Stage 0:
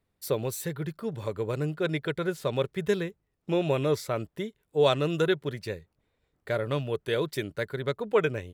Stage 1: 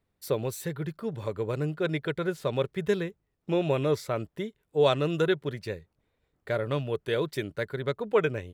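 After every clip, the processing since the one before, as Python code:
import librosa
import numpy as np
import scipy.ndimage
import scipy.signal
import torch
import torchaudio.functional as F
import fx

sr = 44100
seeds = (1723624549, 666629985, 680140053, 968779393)

y = fx.high_shelf(x, sr, hz=4900.0, db=-4.5)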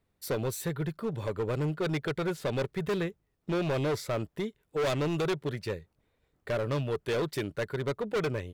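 y = np.clip(10.0 ** (27.5 / 20.0) * x, -1.0, 1.0) / 10.0 ** (27.5 / 20.0)
y = y * 10.0 ** (1.5 / 20.0)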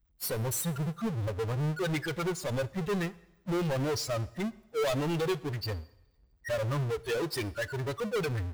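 y = fx.bin_expand(x, sr, power=3.0)
y = fx.power_curve(y, sr, exponent=0.35)
y = fx.rev_double_slope(y, sr, seeds[0], early_s=0.88, late_s=2.3, knee_db=-23, drr_db=17.0)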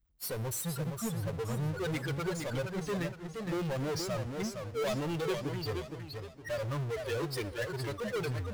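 y = fx.echo_warbled(x, sr, ms=468, feedback_pct=36, rate_hz=2.8, cents=165, wet_db=-5.5)
y = y * 10.0 ** (-4.0 / 20.0)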